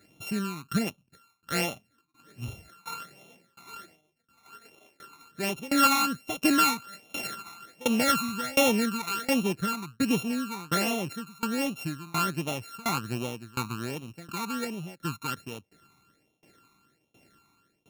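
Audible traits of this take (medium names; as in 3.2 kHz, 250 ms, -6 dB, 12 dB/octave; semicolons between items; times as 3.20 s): a buzz of ramps at a fixed pitch in blocks of 32 samples; phasing stages 12, 1.3 Hz, lowest notch 530–1600 Hz; tremolo saw down 1.4 Hz, depth 95%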